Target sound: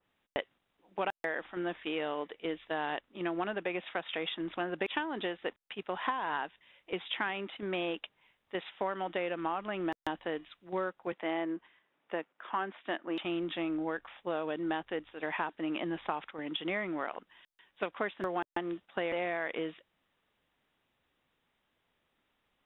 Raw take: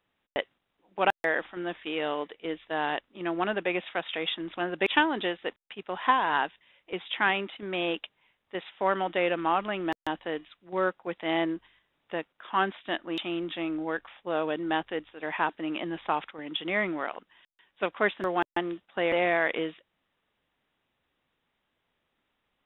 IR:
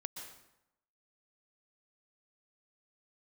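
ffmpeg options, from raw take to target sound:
-filter_complex "[0:a]asettb=1/sr,asplit=3[s0][s1][s2];[s0]atrim=end=11.124[s3];[s1]atrim=start=11.12:end=13.25,asetpts=PTS-STARTPTS,afade=t=in:d=0.004:c=qsin,afade=t=out:st=2.126:d=0.004:c=qsin,acrossover=split=170 3000:gain=0.112 1 0.178[s4][s5][s6];[s4][s5][s6]amix=inputs=3:normalize=0[s7];[s2]atrim=start=13.246[s8];[s3][s7]acrossfade=d=0.004:c1=hsin:c2=qsin[s9];[s9][s8]acrossfade=d=0.004:c1=qsin:c2=hsin,acompressor=threshold=0.0316:ratio=6,adynamicequalizer=threshold=0.00398:dfrequency=2400:dqfactor=0.7:tfrequency=2400:tqfactor=0.7:attack=5:release=100:ratio=0.375:range=2:mode=cutabove:tftype=highshelf"

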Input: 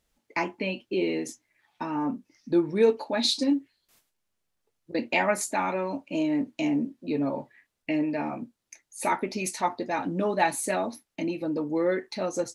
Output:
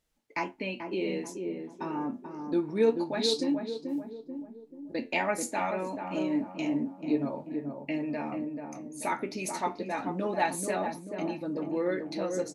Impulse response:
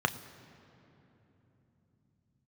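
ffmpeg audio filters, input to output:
-filter_complex "[0:a]asplit=2[s0][s1];[s1]adelay=436,lowpass=f=890:p=1,volume=0.596,asplit=2[s2][s3];[s3]adelay=436,lowpass=f=890:p=1,volume=0.52,asplit=2[s4][s5];[s5]adelay=436,lowpass=f=890:p=1,volume=0.52,asplit=2[s6][s7];[s7]adelay=436,lowpass=f=890:p=1,volume=0.52,asplit=2[s8][s9];[s9]adelay=436,lowpass=f=890:p=1,volume=0.52,asplit=2[s10][s11];[s11]adelay=436,lowpass=f=890:p=1,volume=0.52,asplit=2[s12][s13];[s13]adelay=436,lowpass=f=890:p=1,volume=0.52[s14];[s0][s2][s4][s6][s8][s10][s12][s14]amix=inputs=8:normalize=0,flanger=delay=6.3:depth=6:regen=78:speed=0.27:shape=sinusoidal"

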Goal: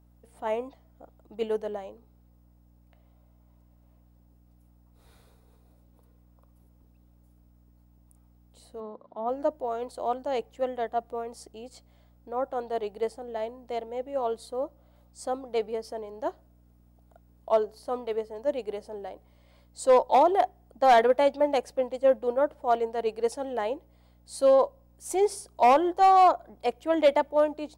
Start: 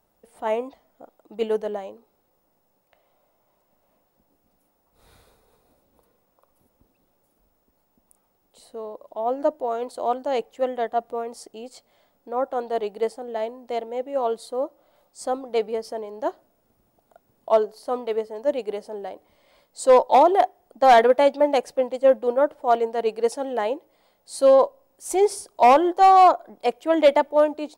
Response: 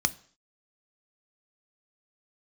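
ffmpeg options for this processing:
-filter_complex "[0:a]aeval=exprs='val(0)+0.00224*(sin(2*PI*60*n/s)+sin(2*PI*2*60*n/s)/2+sin(2*PI*3*60*n/s)/3+sin(2*PI*4*60*n/s)/4+sin(2*PI*5*60*n/s)/5)':c=same,asettb=1/sr,asplit=3[s0][s1][s2];[s0]atrim=end=8.804[s3];[s1]atrim=start=8.8:end=9.29,asetpts=PTS-STARTPTS,afade=t=in:d=0.004:c=qsin,afade=t=out:st=0.486:d=0.004:c=qsin,highpass=170,equalizer=f=220:t=q:w=4:g=9,equalizer=f=590:t=q:w=4:g=-5,equalizer=f=1300:t=q:w=4:g=7,equalizer=f=2700:t=q:w=4:g=-8,lowpass=f=4100:w=0.5412,lowpass=f=4100:w=1.3066[s4];[s2]atrim=start=9.286[s5];[s3][s4]acrossfade=d=0.004:c1=hsin:c2=qsin[s6];[s6][s5]acrossfade=d=0.004:c1=qsin:c2=hsin,volume=0.562"

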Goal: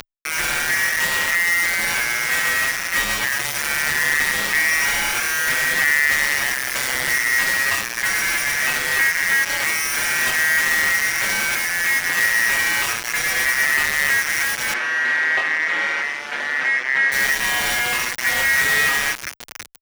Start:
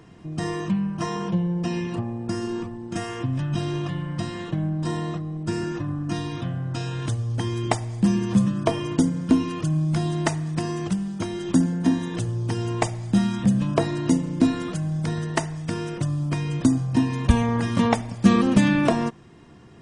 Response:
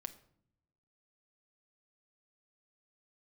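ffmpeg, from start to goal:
-filter_complex "[1:a]atrim=start_sample=2205,asetrate=74970,aresample=44100[s0];[0:a][s0]afir=irnorm=-1:irlink=0,acompressor=threshold=0.02:ratio=12,aeval=exprs='max(val(0),0)':c=same,asplit=2[s1][s2];[s2]adelay=22,volume=0.531[s3];[s1][s3]amix=inputs=2:normalize=0,aecho=1:1:1025:0.211,acompressor=mode=upward:threshold=0.00355:ratio=2.5,aeval=exprs='val(0)*sin(2*PI*1900*n/s)':c=same,acrusher=bits=6:mix=0:aa=0.000001,asettb=1/sr,asplit=3[s4][s5][s6];[s4]atrim=end=14.734[s7];[s5]atrim=start=14.73:end=17.12,asetpts=PTS-STARTPTS,afade=t=in:d=0.004:c=qsin,afade=t=out:st=2.386:d=0.004:c=qsin,highpass=270,lowpass=2800[s8];[s6]atrim=start=17.116[s9];[s7][s8]acrossfade=d=0.004:c1=hsin:c2=qsin[s10];[s10][s9]acrossfade=d=0.004:c1=qsin:c2=hsin,apsyclip=50.1,asplit=2[s11][s12];[s12]adelay=6.8,afreqshift=0.63[s13];[s11][s13]amix=inputs=2:normalize=1,volume=0.376"

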